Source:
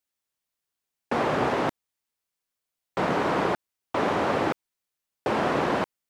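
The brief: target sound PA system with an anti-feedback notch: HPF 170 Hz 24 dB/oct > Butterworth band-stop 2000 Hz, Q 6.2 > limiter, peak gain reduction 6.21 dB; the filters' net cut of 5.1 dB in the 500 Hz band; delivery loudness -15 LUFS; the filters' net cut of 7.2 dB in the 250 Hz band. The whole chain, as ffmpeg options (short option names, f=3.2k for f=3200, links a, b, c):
-af "highpass=f=170:w=0.5412,highpass=f=170:w=1.3066,asuperstop=centerf=2000:order=8:qfactor=6.2,equalizer=f=250:t=o:g=-7.5,equalizer=f=500:t=o:g=-4.5,volume=18dB,alimiter=limit=-4.5dB:level=0:latency=1"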